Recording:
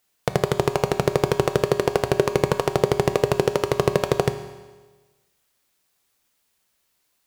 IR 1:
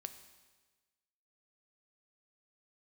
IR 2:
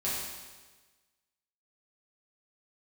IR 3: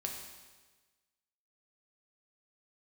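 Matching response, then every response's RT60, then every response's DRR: 1; 1.3, 1.3, 1.3 seconds; 8.5, −9.0, 0.5 decibels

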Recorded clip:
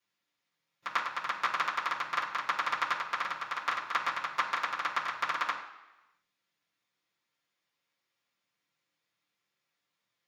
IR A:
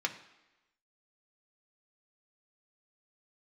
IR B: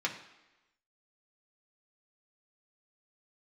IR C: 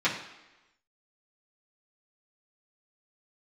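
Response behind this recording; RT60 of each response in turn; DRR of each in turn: C; 1.0, 1.0, 1.0 seconds; 3.0, −1.5, −9.5 decibels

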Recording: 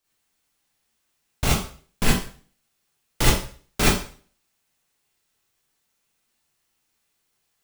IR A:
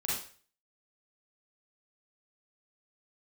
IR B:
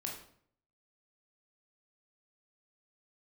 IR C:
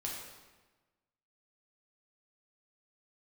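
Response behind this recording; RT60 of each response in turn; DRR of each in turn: A; 0.45, 0.60, 1.2 seconds; −7.0, −1.0, −3.5 decibels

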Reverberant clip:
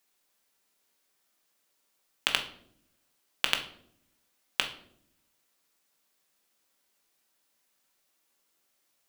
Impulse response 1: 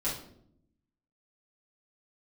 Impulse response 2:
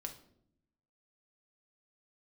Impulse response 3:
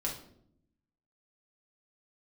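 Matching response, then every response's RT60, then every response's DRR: 2; 0.70, 0.70, 0.70 seconds; −9.0, 4.0, −2.5 decibels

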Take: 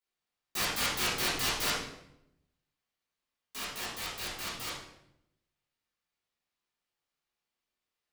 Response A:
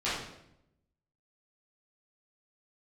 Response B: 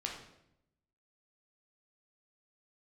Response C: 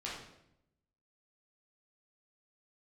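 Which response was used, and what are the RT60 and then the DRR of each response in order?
A; 0.80, 0.80, 0.80 seconds; −12.0, −1.0, −6.5 decibels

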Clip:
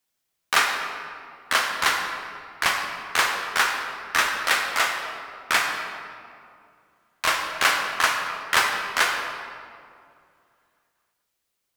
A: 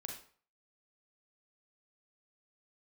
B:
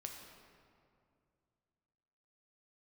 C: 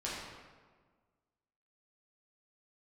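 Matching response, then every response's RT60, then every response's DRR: B; 0.45, 2.4, 1.5 seconds; 1.0, 1.5, −7.5 decibels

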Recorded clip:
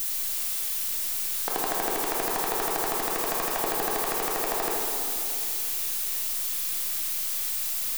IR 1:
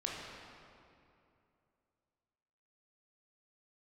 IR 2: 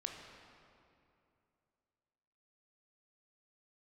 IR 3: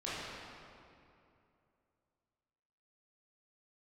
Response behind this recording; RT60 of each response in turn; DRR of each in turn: 1; 2.6, 2.6, 2.6 seconds; −3.5, 1.5, −10.5 decibels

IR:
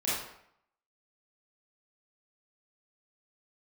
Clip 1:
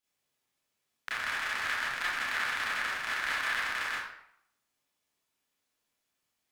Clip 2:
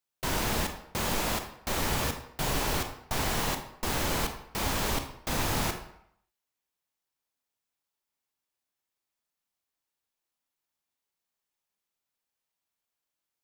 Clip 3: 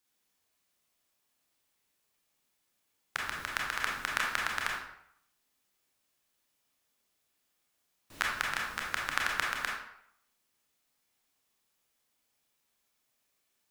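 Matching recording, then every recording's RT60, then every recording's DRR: 1; 0.70, 0.70, 0.70 seconds; −9.5, 6.0, −2.0 decibels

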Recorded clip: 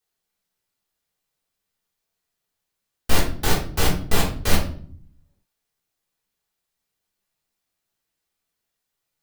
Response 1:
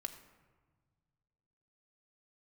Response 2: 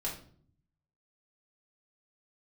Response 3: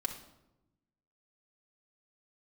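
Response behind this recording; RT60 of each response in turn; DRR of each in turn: 2; 1.5, 0.55, 0.95 seconds; 5.0, −5.0, 0.0 decibels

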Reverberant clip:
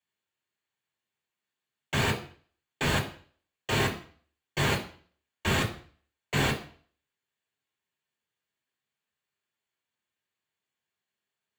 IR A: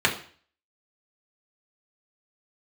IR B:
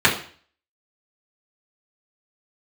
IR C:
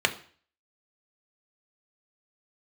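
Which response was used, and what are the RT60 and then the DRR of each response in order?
A; 0.45, 0.45, 0.45 seconds; −2.5, −7.0, 4.5 decibels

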